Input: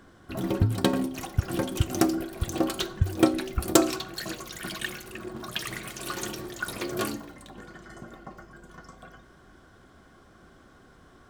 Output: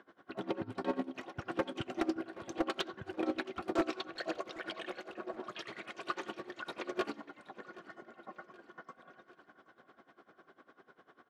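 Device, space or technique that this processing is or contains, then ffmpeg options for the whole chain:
helicopter radio: -filter_complex "[0:a]asettb=1/sr,asplit=3[a][b][c];[a]atrim=end=4.204[d];[b]atrim=start=4.2:end=5.48,asetpts=PTS-STARTPTS,afade=t=in:d=0.004:c=qsin,afade=t=out:st=1.276:d=0.004:c=qsin,equalizer=f=600:t=o:w=1:g=10[e];[c]atrim=start=5.476[f];[d][e]acrossfade=d=0.004:c1=hsin:c2=qsin[g];[g][f]acrossfade=d=0.004:c1=qsin:c2=hsin,highpass=330,lowpass=2.8k,aeval=exprs='val(0)*pow(10,-21*(0.5-0.5*cos(2*PI*10*n/s))/20)':c=same,asoftclip=type=hard:threshold=-25dB,aecho=1:1:774|1548|2322|3096:0.0944|0.0519|0.0286|0.0157,volume=1dB"

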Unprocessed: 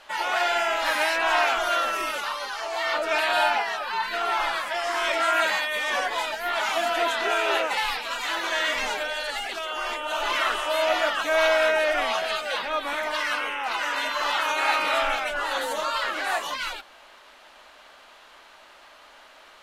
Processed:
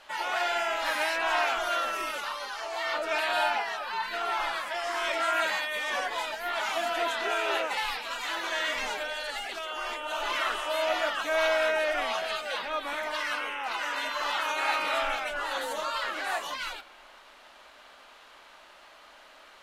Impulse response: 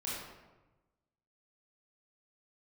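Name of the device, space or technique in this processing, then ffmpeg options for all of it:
ducked reverb: -filter_complex "[0:a]asplit=3[a][b][c];[1:a]atrim=start_sample=2205[d];[b][d]afir=irnorm=-1:irlink=0[e];[c]apad=whole_len=865407[f];[e][f]sidechaincompress=threshold=-42dB:ratio=8:attack=16:release=363,volume=-7dB[g];[a][g]amix=inputs=2:normalize=0,volume=-5dB"

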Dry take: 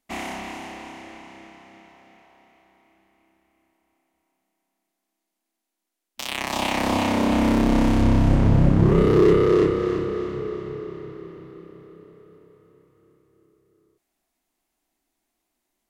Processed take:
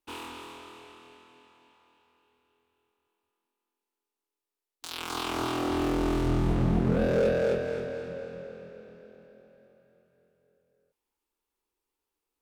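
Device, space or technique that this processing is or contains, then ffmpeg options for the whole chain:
nightcore: -af "asetrate=56448,aresample=44100,volume=-8.5dB"

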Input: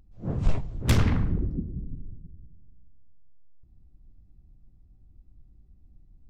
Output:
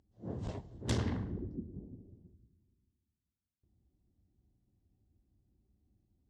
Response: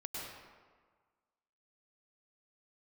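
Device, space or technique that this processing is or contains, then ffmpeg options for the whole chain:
car door speaker: -filter_complex "[0:a]highpass=100,equalizer=f=150:t=q:w=4:g=-9,equalizer=f=380:t=q:w=4:g=3,equalizer=f=1.3k:t=q:w=4:g=-8,equalizer=f=2.4k:t=q:w=4:g=-10,lowpass=f=8.8k:w=0.5412,lowpass=f=8.8k:w=1.3066,asplit=3[a][b][c];[a]afade=t=out:st=1.73:d=0.02[d];[b]equalizer=f=840:t=o:w=2.3:g=12,afade=t=in:st=1.73:d=0.02,afade=t=out:st=2.33:d=0.02[e];[c]afade=t=in:st=2.33:d=0.02[f];[d][e][f]amix=inputs=3:normalize=0,volume=-7.5dB"

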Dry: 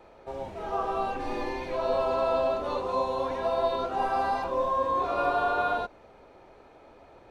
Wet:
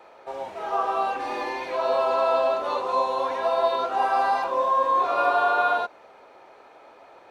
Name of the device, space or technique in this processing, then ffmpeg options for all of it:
filter by subtraction: -filter_complex "[0:a]asplit=2[a][b];[b]lowpass=1k,volume=-1[c];[a][c]amix=inputs=2:normalize=0,volume=4.5dB"

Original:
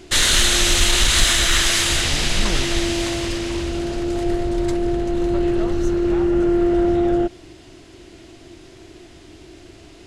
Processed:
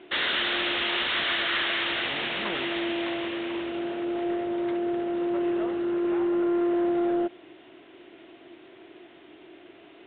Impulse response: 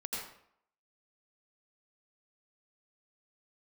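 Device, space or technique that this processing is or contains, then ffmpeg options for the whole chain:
telephone: -af "highpass=320,lowpass=3.5k,asoftclip=type=tanh:threshold=-15.5dB,volume=-3dB" -ar 8000 -c:a pcm_alaw

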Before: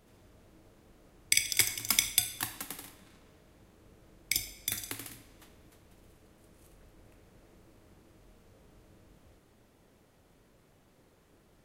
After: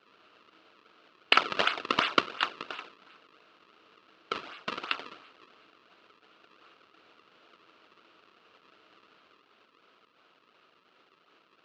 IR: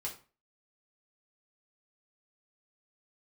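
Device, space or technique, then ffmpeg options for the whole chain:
circuit-bent sampling toy: -filter_complex "[0:a]asplit=3[a][b][c];[a]afade=t=out:st=2.93:d=0.02[d];[b]lowpass=9.2k,afade=t=in:st=2.93:d=0.02,afade=t=out:st=4.43:d=0.02[e];[c]afade=t=in:st=4.43:d=0.02[f];[d][e][f]amix=inputs=3:normalize=0,acrusher=samples=34:mix=1:aa=0.000001:lfo=1:lforange=54.4:lforate=2.8,highpass=560,equalizer=f=560:t=q:w=4:g=-6,equalizer=f=830:t=q:w=4:g=-7,equalizer=f=1.3k:t=q:w=4:g=8,equalizer=f=1.9k:t=q:w=4:g=-4,equalizer=f=2.8k:t=q:w=4:g=7,equalizer=f=4.2k:t=q:w=4:g=3,lowpass=f=4.5k:w=0.5412,lowpass=f=4.5k:w=1.3066,volume=6dB"

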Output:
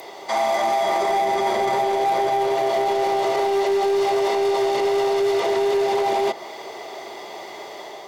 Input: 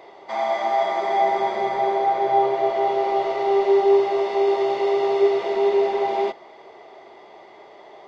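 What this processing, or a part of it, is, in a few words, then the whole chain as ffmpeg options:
FM broadcast chain: -filter_complex "[0:a]highpass=63,dynaudnorm=f=300:g=3:m=3dB,acrossover=split=370|1800[a][b][c];[a]acompressor=threshold=-29dB:ratio=4[d];[b]acompressor=threshold=-22dB:ratio=4[e];[c]acompressor=threshold=-44dB:ratio=4[f];[d][e][f]amix=inputs=3:normalize=0,aemphasis=mode=production:type=50fm,alimiter=limit=-19.5dB:level=0:latency=1:release=10,asoftclip=type=hard:threshold=-22dB,lowpass=f=15k:w=0.5412,lowpass=f=15k:w=1.3066,aemphasis=mode=production:type=50fm,volume=6.5dB"

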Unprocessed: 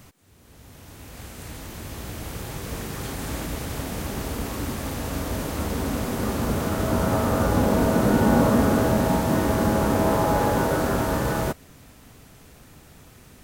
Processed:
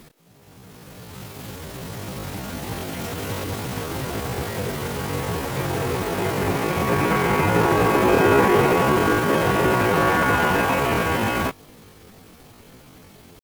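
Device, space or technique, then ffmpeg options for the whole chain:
chipmunk voice: -af "asetrate=76340,aresample=44100,atempo=0.577676,volume=2.5dB"

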